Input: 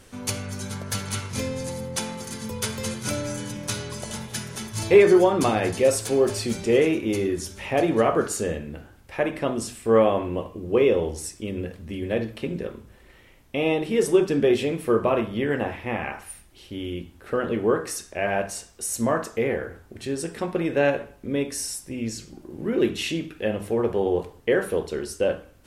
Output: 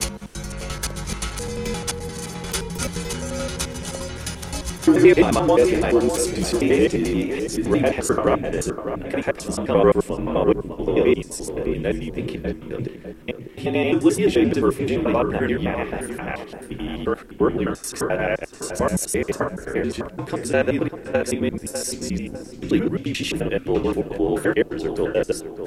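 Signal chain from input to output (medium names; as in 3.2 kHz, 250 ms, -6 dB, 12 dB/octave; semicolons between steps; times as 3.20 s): slices played last to first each 87 ms, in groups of 4; frequency shift -46 Hz; tape echo 600 ms, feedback 45%, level -8 dB, low-pass 1.6 kHz; trim +2.5 dB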